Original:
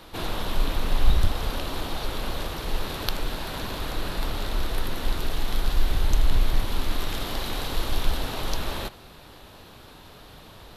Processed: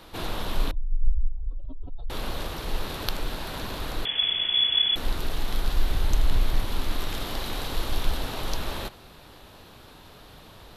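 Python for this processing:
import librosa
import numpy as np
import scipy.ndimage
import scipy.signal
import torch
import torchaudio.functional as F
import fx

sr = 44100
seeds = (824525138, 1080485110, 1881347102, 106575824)

y = fx.spec_expand(x, sr, power=3.2, at=(0.71, 2.1))
y = fx.freq_invert(y, sr, carrier_hz=3400, at=(4.05, 4.96))
y = y * 10.0 ** (-1.5 / 20.0)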